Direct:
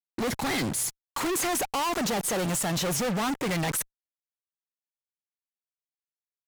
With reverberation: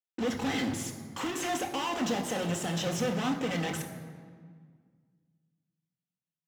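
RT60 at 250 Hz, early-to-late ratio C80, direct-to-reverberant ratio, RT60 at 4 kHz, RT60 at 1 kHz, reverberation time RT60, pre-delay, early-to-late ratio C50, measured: 2.4 s, 9.5 dB, 2.5 dB, 1.2 s, 1.8 s, 1.8 s, 3 ms, 8.5 dB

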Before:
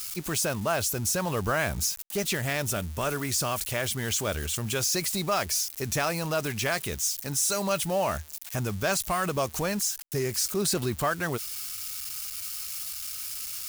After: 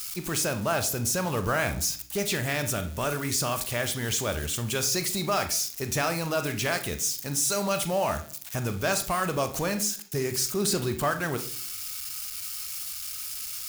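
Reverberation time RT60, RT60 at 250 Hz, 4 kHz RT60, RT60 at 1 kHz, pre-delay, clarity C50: 0.55 s, 0.70 s, 0.70 s, 0.50 s, 30 ms, 12.0 dB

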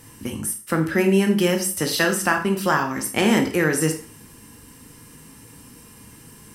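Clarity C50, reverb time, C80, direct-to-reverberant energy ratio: 10.0 dB, 0.40 s, 14.0 dB, 4.0 dB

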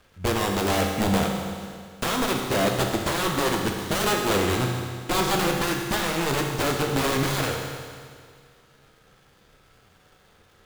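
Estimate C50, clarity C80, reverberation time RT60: 3.0 dB, 4.5 dB, 2.0 s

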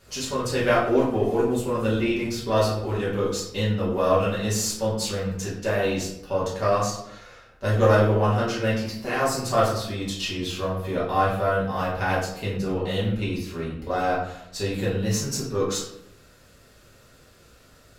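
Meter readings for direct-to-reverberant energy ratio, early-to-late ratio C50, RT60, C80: -8.5 dB, 3.5 dB, 0.80 s, 7.5 dB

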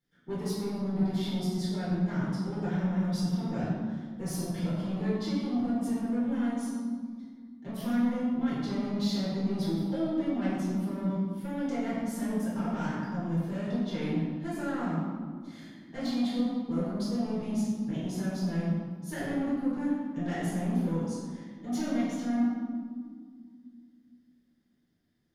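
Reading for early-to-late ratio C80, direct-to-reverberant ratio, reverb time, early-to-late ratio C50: 0.5 dB, -10.5 dB, 2.0 s, -1.5 dB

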